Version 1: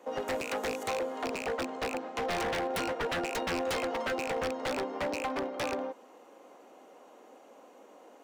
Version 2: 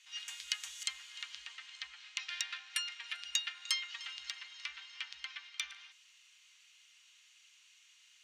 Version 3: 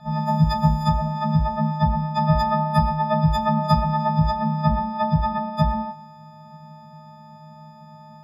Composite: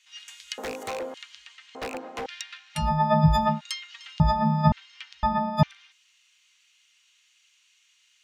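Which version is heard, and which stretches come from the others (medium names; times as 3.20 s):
2
0.58–1.14 s: from 1
1.75–2.26 s: from 1
2.83–3.53 s: from 3, crossfade 0.16 s
4.20–4.72 s: from 3
5.23–5.63 s: from 3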